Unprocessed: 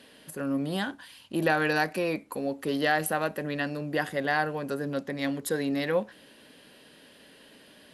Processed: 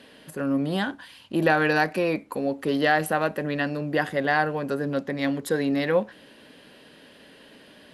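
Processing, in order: treble shelf 5.7 kHz -9 dB; trim +4.5 dB

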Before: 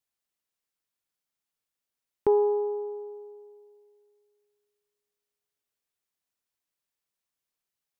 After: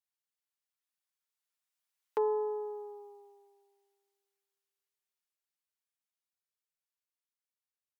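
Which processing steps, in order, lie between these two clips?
Doppler pass-by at 2.88 s, 16 m/s, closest 11 m; high-pass 800 Hz 12 dB/octave; comb 6.5 ms, depth 44%; trim +4.5 dB

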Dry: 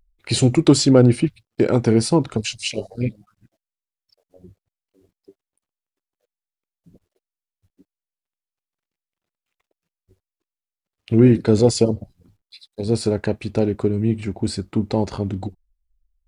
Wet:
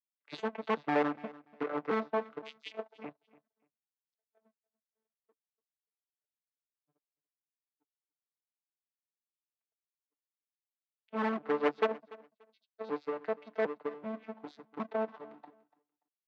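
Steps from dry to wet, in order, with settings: vocoder on a broken chord bare fifth, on D3, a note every 379 ms; low-pass that closes with the level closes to 1.4 kHz, closed at -13 dBFS; 11.44–13.85 s: comb 6.4 ms, depth 36%; overload inside the chain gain 10 dB; power-law waveshaper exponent 1.4; band-pass 780–3200 Hz; feedback delay 290 ms, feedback 20%, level -20.5 dB

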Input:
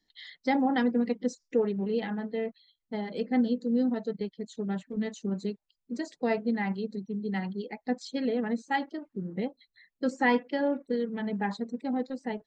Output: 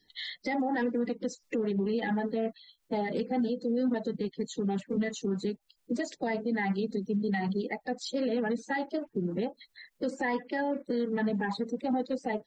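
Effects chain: coarse spectral quantiser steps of 30 dB; compression 2.5:1, threshold -35 dBFS, peak gain reduction 10 dB; peak limiter -30.5 dBFS, peak gain reduction 9 dB; trim +8.5 dB

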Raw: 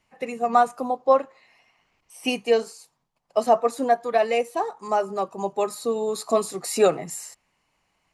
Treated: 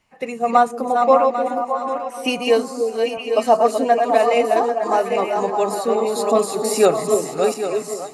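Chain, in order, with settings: backward echo that repeats 397 ms, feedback 50%, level -4.5 dB; repeats whose band climbs or falls 304 ms, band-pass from 330 Hz, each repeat 1.4 oct, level -2.5 dB; trim +3.5 dB

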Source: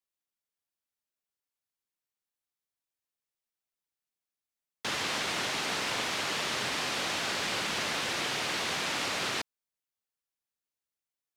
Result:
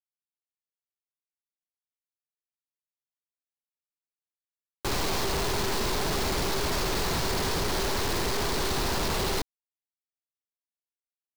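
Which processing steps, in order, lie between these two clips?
FFT filter 140 Hz 0 dB, 250 Hz -27 dB, 390 Hz +15 dB, 550 Hz -10 dB, 1 kHz +7 dB, 1.5 kHz -15 dB, 2.6 kHz -9 dB, 4.2 kHz +13 dB, 14 kHz +12 dB; Schmitt trigger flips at -24 dBFS; bit crusher 5-bit

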